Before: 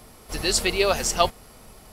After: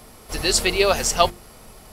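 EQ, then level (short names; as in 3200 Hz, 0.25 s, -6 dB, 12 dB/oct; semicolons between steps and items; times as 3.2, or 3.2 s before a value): notches 50/100/150/200/250/300/350 Hz; +3.0 dB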